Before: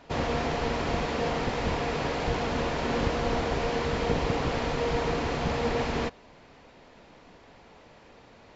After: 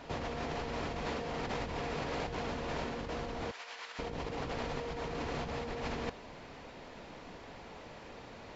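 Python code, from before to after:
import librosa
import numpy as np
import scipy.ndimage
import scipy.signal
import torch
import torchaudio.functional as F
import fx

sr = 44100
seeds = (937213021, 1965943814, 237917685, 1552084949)

y = fx.over_compress(x, sr, threshold_db=-35.0, ratio=-1.0)
y = fx.highpass(y, sr, hz=1300.0, slope=12, at=(3.51, 3.99))
y = y * 10.0 ** (-3.0 / 20.0)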